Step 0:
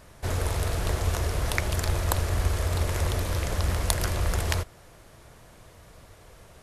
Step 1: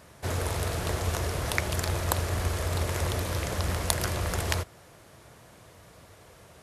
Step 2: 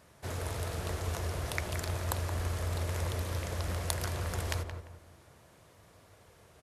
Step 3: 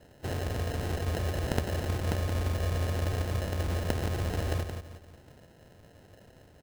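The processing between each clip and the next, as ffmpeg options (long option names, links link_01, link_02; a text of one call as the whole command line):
ffmpeg -i in.wav -af "highpass=82" out.wav
ffmpeg -i in.wav -filter_complex "[0:a]asplit=2[link_01][link_02];[link_02]adelay=173,lowpass=frequency=1500:poles=1,volume=-6dB,asplit=2[link_03][link_04];[link_04]adelay=173,lowpass=frequency=1500:poles=1,volume=0.38,asplit=2[link_05][link_06];[link_06]adelay=173,lowpass=frequency=1500:poles=1,volume=0.38,asplit=2[link_07][link_08];[link_08]adelay=173,lowpass=frequency=1500:poles=1,volume=0.38,asplit=2[link_09][link_10];[link_10]adelay=173,lowpass=frequency=1500:poles=1,volume=0.38[link_11];[link_01][link_03][link_05][link_07][link_09][link_11]amix=inputs=6:normalize=0,volume=-7.5dB" out.wav
ffmpeg -i in.wav -af "acrusher=samples=38:mix=1:aa=0.000001,volume=4dB" out.wav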